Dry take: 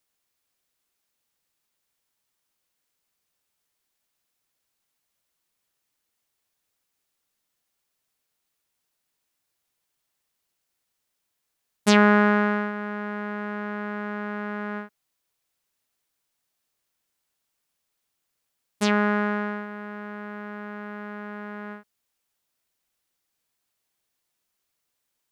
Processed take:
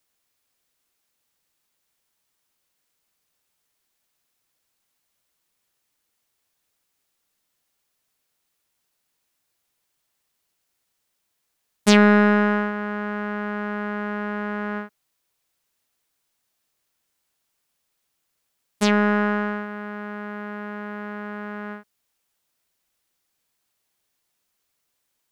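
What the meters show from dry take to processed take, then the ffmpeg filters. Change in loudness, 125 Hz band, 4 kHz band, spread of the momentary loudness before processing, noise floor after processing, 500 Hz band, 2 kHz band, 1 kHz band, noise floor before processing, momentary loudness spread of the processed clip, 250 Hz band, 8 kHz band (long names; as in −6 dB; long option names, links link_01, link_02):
+1.5 dB, can't be measured, +3.0 dB, 18 LU, −76 dBFS, +3.0 dB, +2.0 dB, +1.0 dB, −79 dBFS, 17 LU, +3.5 dB, +3.0 dB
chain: -filter_complex "[0:a]acrossover=split=680|1500[link_01][link_02][link_03];[link_02]alimiter=limit=-23dB:level=0:latency=1[link_04];[link_01][link_04][link_03]amix=inputs=3:normalize=0,aeval=exprs='0.631*(cos(1*acos(clip(val(0)/0.631,-1,1)))-cos(1*PI/2))+0.01*(cos(8*acos(clip(val(0)/0.631,-1,1)))-cos(8*PI/2))':channel_layout=same,volume=3.5dB"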